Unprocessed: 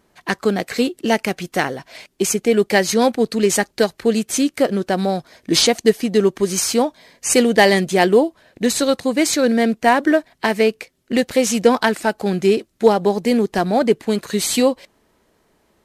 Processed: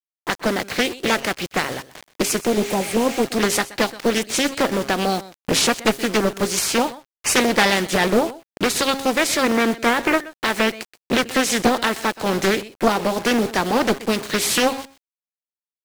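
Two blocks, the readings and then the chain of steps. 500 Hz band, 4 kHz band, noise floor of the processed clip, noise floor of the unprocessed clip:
−5.0 dB, +1.0 dB, below −85 dBFS, −63 dBFS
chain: ceiling on every frequency bin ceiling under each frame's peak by 14 dB
camcorder AGC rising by 10 dB per second
high-pass filter 52 Hz 24 dB per octave
healed spectral selection 0:02.49–0:03.22, 920–8,100 Hz before
low-pass that shuts in the quiet parts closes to 790 Hz, open at −15.5 dBFS
in parallel at +1 dB: downward compressor 12 to 1, threshold −24 dBFS, peak gain reduction 18 dB
on the sum: hum removal 135.7 Hz, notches 6
tube saturation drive 2 dB, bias 0.4
bit reduction 5 bits
on a send: single-tap delay 126 ms −18 dB
on the sum: highs frequency-modulated by the lows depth 0.55 ms
level −3 dB

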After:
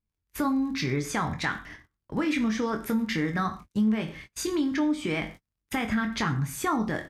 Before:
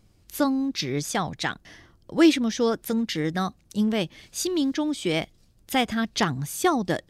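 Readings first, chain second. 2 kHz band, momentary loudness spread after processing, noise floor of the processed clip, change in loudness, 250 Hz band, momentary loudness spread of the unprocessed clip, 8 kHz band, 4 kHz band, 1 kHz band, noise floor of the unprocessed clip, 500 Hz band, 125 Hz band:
−0.5 dB, 8 LU, −85 dBFS, −3.0 dB, −2.5 dB, 10 LU, −5.5 dB, −7.5 dB, −2.5 dB, −60 dBFS, −6.5 dB, +0.5 dB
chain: brickwall limiter −17.5 dBFS, peak gain reduction 11 dB
flat-topped bell 1,500 Hz +10 dB
surface crackle 35 per second −35 dBFS
low-shelf EQ 450 Hz +10.5 dB
double-tracking delay 23 ms −8 dB
reverb whose tail is shaped and stops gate 160 ms falling, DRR 7.5 dB
noise gate −36 dBFS, range −32 dB
downsampling to 32,000 Hz
downward compressor 2.5 to 1, threshold −19 dBFS, peak gain reduction 8 dB
level −5.5 dB

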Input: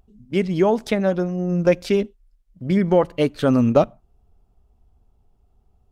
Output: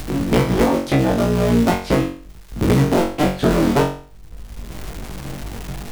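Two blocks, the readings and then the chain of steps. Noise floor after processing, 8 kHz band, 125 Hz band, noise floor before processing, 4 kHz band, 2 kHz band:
−40 dBFS, can't be measured, +5.5 dB, −62 dBFS, +7.0 dB, +5.5 dB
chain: sub-harmonics by changed cycles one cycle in 3, inverted
chorus effect 2.1 Hz, delay 15 ms, depth 3.2 ms
on a send: flutter between parallel walls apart 3.7 metres, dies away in 0.35 s
on the sum: surface crackle 550 per second −52 dBFS
low-shelf EQ 220 Hz +7 dB
multiband upward and downward compressor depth 100%

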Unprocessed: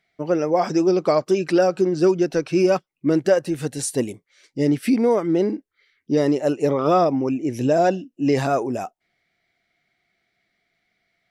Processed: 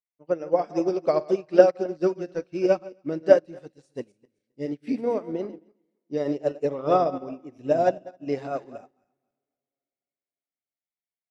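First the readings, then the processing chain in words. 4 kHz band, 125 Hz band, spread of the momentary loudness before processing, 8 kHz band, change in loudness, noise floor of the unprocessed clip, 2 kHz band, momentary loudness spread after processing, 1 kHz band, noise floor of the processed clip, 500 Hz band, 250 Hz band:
below −10 dB, −11.5 dB, 7 LU, below −15 dB, −4.0 dB, −75 dBFS, −7.0 dB, 19 LU, −5.0 dB, below −85 dBFS, −3.0 dB, −9.5 dB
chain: feedback delay that plays each chunk backwards 133 ms, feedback 50%, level −8.5 dB
low-pass filter 5,400 Hz 12 dB per octave
dynamic equaliser 570 Hz, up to +5 dB, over −31 dBFS, Q 2.2
coupled-rooms reverb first 0.54 s, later 3.5 s, from −16 dB, DRR 14 dB
expander for the loud parts 2.5 to 1, over −32 dBFS

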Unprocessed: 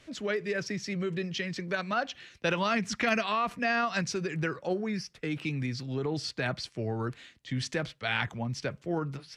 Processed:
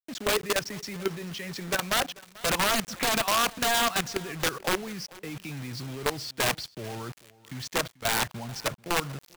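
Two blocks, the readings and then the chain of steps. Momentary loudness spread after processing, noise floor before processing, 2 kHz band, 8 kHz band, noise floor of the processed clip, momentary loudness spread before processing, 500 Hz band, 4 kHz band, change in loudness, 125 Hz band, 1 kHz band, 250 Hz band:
14 LU, −61 dBFS, +2.0 dB, +12.0 dB, −58 dBFS, 7 LU, +1.0 dB, +8.0 dB, +3.5 dB, −3.5 dB, +3.5 dB, −2.5 dB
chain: dynamic equaliser 910 Hz, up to +7 dB, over −43 dBFS, Q 0.92
output level in coarse steps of 14 dB
wrap-around overflow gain 23 dB
bit-depth reduction 8 bits, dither none
single-tap delay 439 ms −21.5 dB
level +5 dB

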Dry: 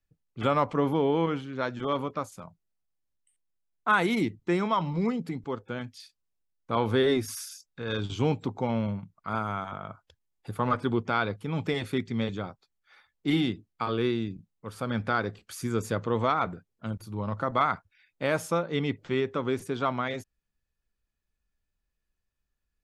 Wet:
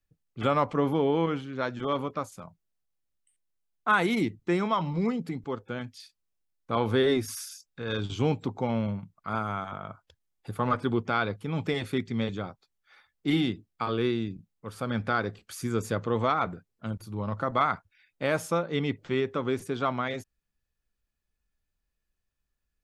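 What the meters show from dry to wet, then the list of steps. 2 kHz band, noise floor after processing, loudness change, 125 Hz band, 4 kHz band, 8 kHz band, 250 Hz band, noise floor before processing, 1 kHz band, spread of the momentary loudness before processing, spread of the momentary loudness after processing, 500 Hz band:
0.0 dB, −82 dBFS, 0.0 dB, 0.0 dB, 0.0 dB, 0.0 dB, 0.0 dB, −82 dBFS, −0.5 dB, 12 LU, 12 LU, 0.0 dB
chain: notch filter 950 Hz, Q 28

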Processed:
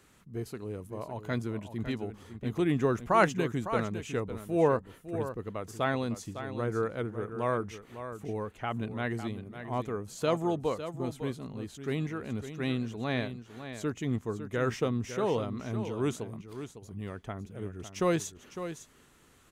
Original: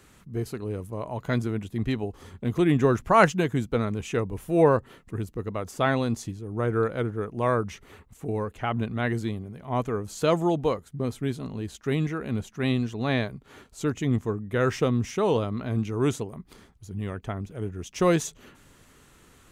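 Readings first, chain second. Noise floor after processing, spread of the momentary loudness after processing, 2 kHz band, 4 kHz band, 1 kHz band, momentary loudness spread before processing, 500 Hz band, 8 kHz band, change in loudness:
−60 dBFS, 13 LU, −5.0 dB, −5.0 dB, −5.0 dB, 13 LU, −5.5 dB, −5.0 dB, −6.0 dB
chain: low-shelf EQ 100 Hz −5 dB
on a send: single-tap delay 555 ms −10.5 dB
on the sum: level −5.5 dB

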